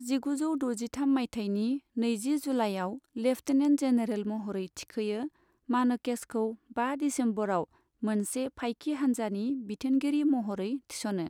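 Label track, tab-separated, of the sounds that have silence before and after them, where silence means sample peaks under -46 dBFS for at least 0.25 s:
5.690000	7.640000	sound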